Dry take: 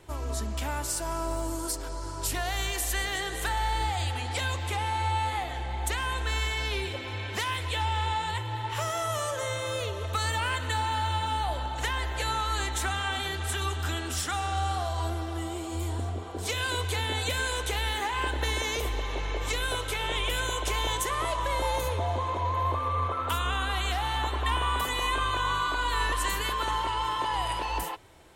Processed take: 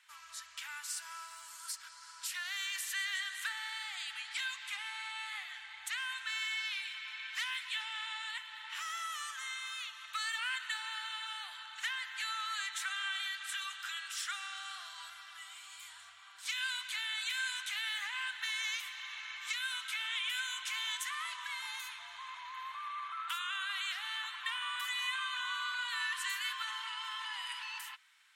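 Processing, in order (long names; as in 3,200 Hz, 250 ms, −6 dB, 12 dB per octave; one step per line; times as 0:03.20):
inverse Chebyshev high-pass filter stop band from 550 Hz, stop band 50 dB
high-shelf EQ 6,700 Hz −10 dB
level −2.5 dB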